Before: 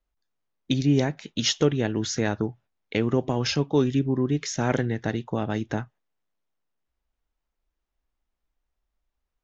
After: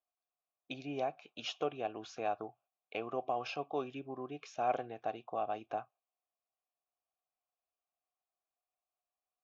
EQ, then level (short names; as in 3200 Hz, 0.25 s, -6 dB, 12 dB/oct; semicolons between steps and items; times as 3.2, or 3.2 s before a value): vowel filter a; bell 200 Hz -4 dB 0.68 oct; +2.5 dB